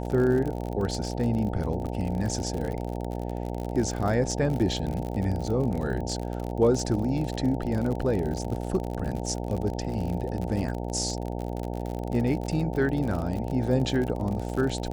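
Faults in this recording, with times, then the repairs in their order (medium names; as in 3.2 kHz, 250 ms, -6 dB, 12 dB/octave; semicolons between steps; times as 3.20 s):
buzz 60 Hz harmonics 15 -32 dBFS
crackle 50 per s -30 dBFS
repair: de-click; de-hum 60 Hz, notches 15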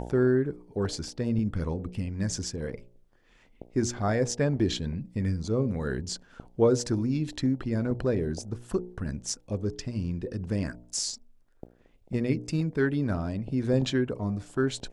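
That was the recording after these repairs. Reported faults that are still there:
nothing left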